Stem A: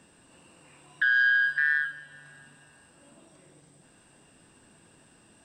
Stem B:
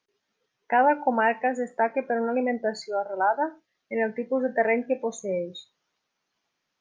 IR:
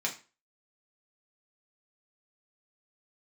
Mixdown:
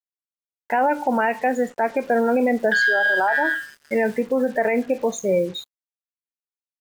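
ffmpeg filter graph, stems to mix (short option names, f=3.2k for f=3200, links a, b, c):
-filter_complex "[0:a]highpass=f=300:p=1,highshelf=f=2.1k:g=7.5,aeval=exprs='val(0)*gte(abs(val(0)),0.00562)':c=same,adelay=1700,volume=-2dB,asplit=2[a][b];[b]volume=-5.5dB[c];[1:a]dynaudnorm=f=150:g=3:m=10.5dB,volume=-1.5dB,asplit=2[d][e];[e]apad=whole_len=315273[f];[a][f]sidechaingate=range=-18dB:threshold=-39dB:ratio=16:detection=peak[g];[2:a]atrim=start_sample=2205[h];[c][h]afir=irnorm=-1:irlink=0[i];[g][d][i]amix=inputs=3:normalize=0,acrusher=bits=6:mix=0:aa=0.5,alimiter=limit=-11.5dB:level=0:latency=1:release=45"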